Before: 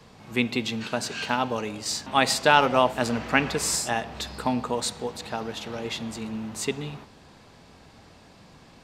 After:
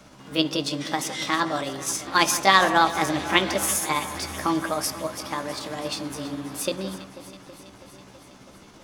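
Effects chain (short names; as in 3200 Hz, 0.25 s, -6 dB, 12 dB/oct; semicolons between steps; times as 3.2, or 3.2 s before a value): delay-line pitch shifter +4.5 st; on a send: echo with dull and thin repeats by turns 0.163 s, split 2200 Hz, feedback 84%, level -13.5 dB; on the sum: gain +2.5 dB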